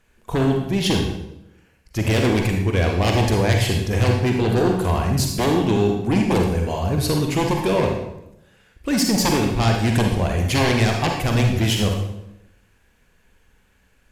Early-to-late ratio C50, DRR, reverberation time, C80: 3.0 dB, 1.5 dB, 0.85 s, 6.5 dB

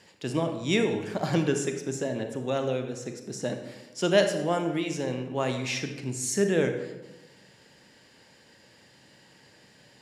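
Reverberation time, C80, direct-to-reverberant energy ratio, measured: 1.1 s, 9.5 dB, 6.0 dB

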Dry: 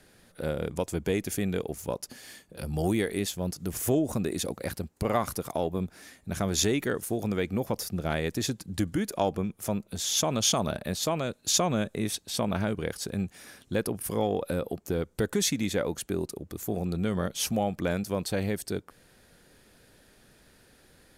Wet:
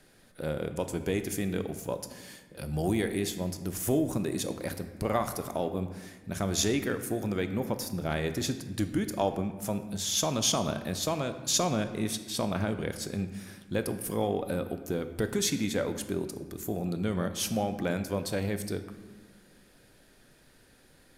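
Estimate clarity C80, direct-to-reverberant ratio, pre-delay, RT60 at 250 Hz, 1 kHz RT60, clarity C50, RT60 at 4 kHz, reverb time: 12.0 dB, 8.0 dB, 3 ms, 2.0 s, 1.3 s, 10.0 dB, 0.90 s, 1.4 s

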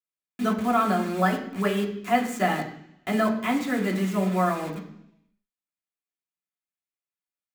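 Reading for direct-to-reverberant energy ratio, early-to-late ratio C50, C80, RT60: −3.0 dB, 9.0 dB, 11.0 dB, 0.70 s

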